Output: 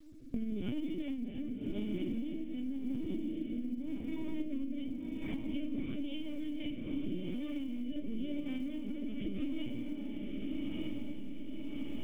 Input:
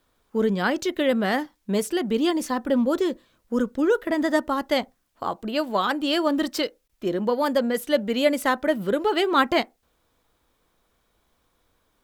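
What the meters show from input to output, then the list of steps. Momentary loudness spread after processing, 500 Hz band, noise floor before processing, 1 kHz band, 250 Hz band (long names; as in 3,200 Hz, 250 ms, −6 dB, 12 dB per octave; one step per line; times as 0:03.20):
4 LU, −24.0 dB, −70 dBFS, below −35 dB, −10.0 dB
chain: lower of the sound and its delayed copy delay 8.4 ms
tube saturation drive 25 dB, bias 0.35
in parallel at −8 dB: wrap-around overflow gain 36 dB
on the sum: rectangular room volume 80 cubic metres, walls mixed, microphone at 4.2 metres
low-pass that shuts in the quiet parts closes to 740 Hz, open at −24 dBFS
linear-prediction vocoder at 8 kHz pitch kept
formant resonators in series i
feedback delay with all-pass diffusion 1,108 ms, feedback 45%, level −7 dB
log-companded quantiser 8 bits
downward compressor 12 to 1, threshold −46 dBFS, peak gain reduction 31 dB
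rotating-speaker cabinet horn 0.9 Hz
level +13 dB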